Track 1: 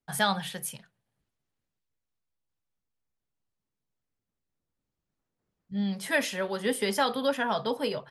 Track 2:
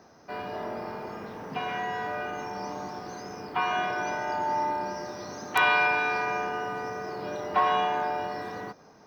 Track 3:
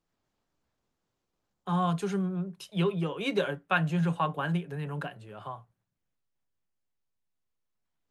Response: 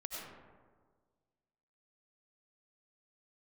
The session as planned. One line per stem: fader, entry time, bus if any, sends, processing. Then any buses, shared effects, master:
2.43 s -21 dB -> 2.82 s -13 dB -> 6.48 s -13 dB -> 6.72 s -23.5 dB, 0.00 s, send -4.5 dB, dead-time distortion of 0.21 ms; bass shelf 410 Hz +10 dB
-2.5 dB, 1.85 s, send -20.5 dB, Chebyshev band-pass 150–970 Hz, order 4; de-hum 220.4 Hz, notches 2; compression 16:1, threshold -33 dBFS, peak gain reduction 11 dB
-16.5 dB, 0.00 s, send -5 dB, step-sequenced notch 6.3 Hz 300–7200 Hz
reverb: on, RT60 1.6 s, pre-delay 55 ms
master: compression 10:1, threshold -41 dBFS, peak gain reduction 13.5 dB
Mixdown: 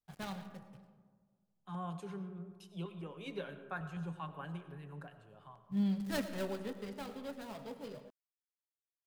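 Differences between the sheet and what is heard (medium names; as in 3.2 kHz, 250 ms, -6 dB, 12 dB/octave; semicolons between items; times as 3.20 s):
stem 2: muted; master: missing compression 10:1, threshold -41 dBFS, peak gain reduction 13.5 dB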